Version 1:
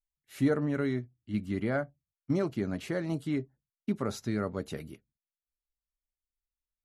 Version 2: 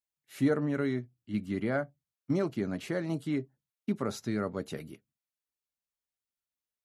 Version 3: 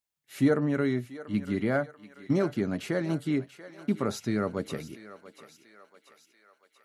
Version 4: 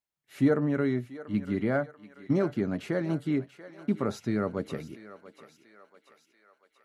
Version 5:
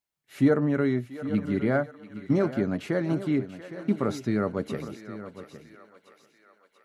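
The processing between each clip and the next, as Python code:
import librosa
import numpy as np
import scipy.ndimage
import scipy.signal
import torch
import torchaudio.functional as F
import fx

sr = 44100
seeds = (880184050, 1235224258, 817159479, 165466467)

y1 = scipy.signal.sosfilt(scipy.signal.butter(2, 110.0, 'highpass', fs=sr, output='sos'), x)
y2 = fx.echo_thinned(y1, sr, ms=687, feedback_pct=60, hz=600.0, wet_db=-13.0)
y2 = F.gain(torch.from_numpy(y2), 3.5).numpy()
y3 = fx.high_shelf(y2, sr, hz=3300.0, db=-8.5)
y4 = y3 + 10.0 ** (-13.5 / 20.0) * np.pad(y3, (int(812 * sr / 1000.0), 0))[:len(y3)]
y4 = F.gain(torch.from_numpy(y4), 2.5).numpy()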